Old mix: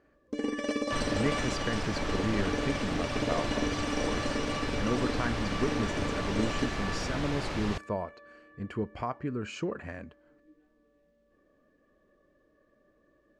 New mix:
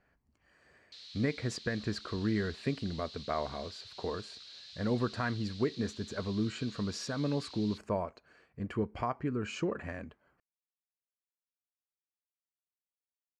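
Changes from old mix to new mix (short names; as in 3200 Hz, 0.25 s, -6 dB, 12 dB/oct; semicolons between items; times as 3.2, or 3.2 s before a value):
first sound: muted; second sound: add ladder band-pass 4400 Hz, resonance 75%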